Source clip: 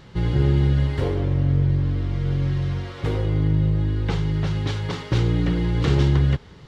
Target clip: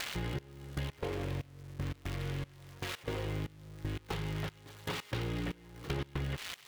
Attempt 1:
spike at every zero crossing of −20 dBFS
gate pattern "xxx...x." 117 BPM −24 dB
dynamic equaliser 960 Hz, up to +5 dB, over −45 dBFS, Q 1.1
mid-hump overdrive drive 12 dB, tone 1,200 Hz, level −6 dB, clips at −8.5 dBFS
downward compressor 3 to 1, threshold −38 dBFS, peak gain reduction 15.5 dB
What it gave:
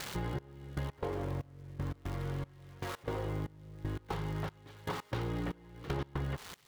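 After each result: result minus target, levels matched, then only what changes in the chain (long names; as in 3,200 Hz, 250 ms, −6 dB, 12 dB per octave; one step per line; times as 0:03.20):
spike at every zero crossing: distortion −8 dB; 1,000 Hz band +3.0 dB
change: spike at every zero crossing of −11.5 dBFS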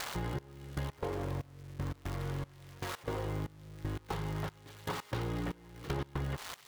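1,000 Hz band +3.5 dB
change: dynamic equaliser 2,600 Hz, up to +5 dB, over −45 dBFS, Q 1.1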